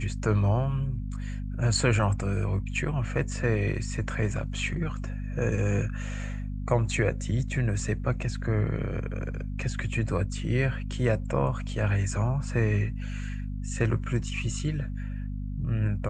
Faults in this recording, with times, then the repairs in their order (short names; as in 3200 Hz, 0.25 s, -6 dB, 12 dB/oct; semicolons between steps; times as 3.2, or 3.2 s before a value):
hum 50 Hz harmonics 5 -33 dBFS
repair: de-hum 50 Hz, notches 5